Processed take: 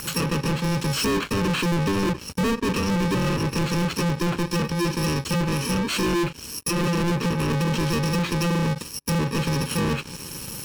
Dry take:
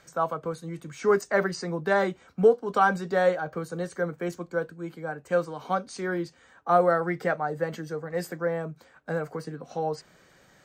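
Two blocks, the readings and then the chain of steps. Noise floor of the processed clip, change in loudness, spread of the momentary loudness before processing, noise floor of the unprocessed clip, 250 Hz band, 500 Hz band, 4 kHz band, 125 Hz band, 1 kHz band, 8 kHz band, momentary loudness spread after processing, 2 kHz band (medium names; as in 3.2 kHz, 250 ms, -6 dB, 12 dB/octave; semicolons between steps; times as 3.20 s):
-38 dBFS, +3.5 dB, 14 LU, -59 dBFS, +10.0 dB, -3.0 dB, +17.0 dB, +13.5 dB, -1.0 dB, +15.5 dB, 4 LU, +2.5 dB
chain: bit-reversed sample order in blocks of 64 samples; peak limiter -20 dBFS, peak gain reduction 11.5 dB; low-pass that closes with the level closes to 1.8 kHz, closed at -26 dBFS; dynamic bell 9.2 kHz, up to -4 dB, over -59 dBFS, Q 1; saturation -27.5 dBFS, distortion -19 dB; waveshaping leveller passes 5; trim +8 dB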